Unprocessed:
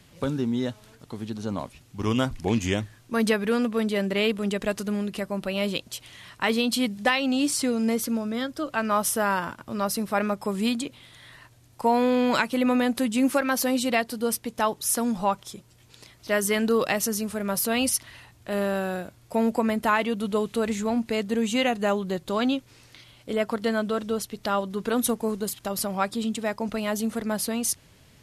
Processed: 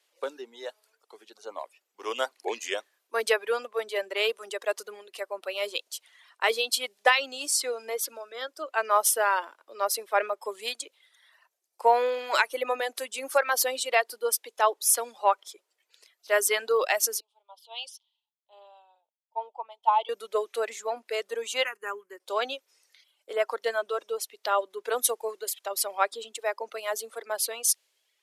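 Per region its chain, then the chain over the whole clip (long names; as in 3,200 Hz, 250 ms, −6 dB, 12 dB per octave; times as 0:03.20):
0:17.20–0:20.09: pair of resonant band-passes 1,700 Hz, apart 1.9 octaves + multiband upward and downward expander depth 70%
0:21.64–0:22.20: downward expander −30 dBFS + phaser with its sweep stopped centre 1,600 Hz, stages 4
whole clip: reverb reduction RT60 1.3 s; Butterworth high-pass 410 Hz 36 dB per octave; multiband upward and downward expander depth 40%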